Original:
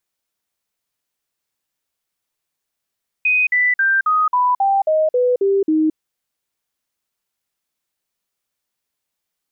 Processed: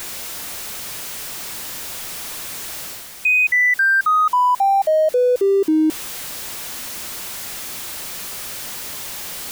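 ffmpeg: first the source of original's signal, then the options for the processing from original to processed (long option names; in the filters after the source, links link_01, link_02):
-f lavfi -i "aevalsrc='0.237*clip(min(mod(t,0.27),0.22-mod(t,0.27))/0.005,0,1)*sin(2*PI*2500*pow(2,-floor(t/0.27)/3)*mod(t,0.27))':duration=2.7:sample_rate=44100"
-af "aeval=exprs='val(0)+0.5*0.0282*sgn(val(0))':channel_layout=same,areverse,acompressor=mode=upward:threshold=-25dB:ratio=2.5,areverse"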